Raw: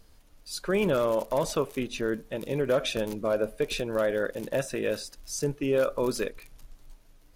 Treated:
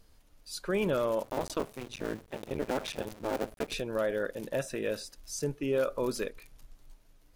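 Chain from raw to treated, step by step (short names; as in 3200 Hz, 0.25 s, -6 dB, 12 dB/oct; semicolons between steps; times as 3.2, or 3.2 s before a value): 1.23–3.74 cycle switcher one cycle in 2, muted; gain -4 dB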